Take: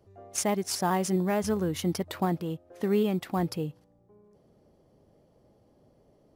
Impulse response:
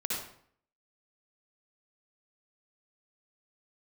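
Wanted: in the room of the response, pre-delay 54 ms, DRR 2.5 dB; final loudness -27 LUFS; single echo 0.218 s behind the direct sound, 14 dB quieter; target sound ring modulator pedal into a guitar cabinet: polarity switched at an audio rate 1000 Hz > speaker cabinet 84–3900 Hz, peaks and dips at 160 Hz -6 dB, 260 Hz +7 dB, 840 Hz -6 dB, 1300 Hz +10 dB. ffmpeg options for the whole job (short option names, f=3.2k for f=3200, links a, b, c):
-filter_complex "[0:a]aecho=1:1:218:0.2,asplit=2[a][b];[1:a]atrim=start_sample=2205,adelay=54[c];[b][c]afir=irnorm=-1:irlink=0,volume=-7.5dB[d];[a][d]amix=inputs=2:normalize=0,aeval=exprs='val(0)*sgn(sin(2*PI*1000*n/s))':c=same,highpass=84,equalizer=f=160:t=q:w=4:g=-6,equalizer=f=260:t=q:w=4:g=7,equalizer=f=840:t=q:w=4:g=-6,equalizer=f=1.3k:t=q:w=4:g=10,lowpass=f=3.9k:w=0.5412,lowpass=f=3.9k:w=1.3066,volume=-4.5dB"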